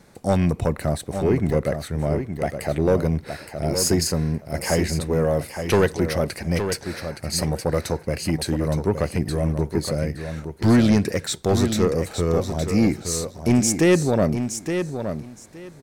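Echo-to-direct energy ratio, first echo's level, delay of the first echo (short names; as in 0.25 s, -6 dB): -8.0 dB, -8.0 dB, 0.868 s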